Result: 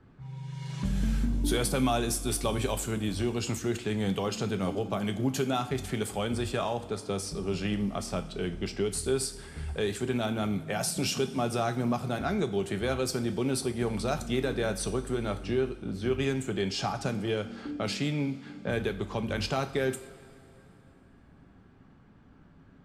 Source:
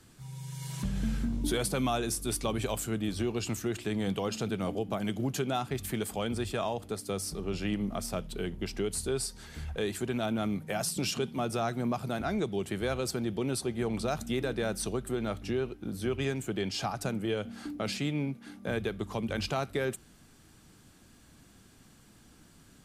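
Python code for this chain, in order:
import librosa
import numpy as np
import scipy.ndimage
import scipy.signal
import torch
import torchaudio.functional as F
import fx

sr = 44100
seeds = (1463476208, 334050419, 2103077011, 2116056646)

y = fx.env_lowpass(x, sr, base_hz=1400.0, full_db=-28.0)
y = fx.rev_double_slope(y, sr, seeds[0], early_s=0.39, late_s=2.9, knee_db=-17, drr_db=7.5)
y = F.gain(torch.from_numpy(y), 1.5).numpy()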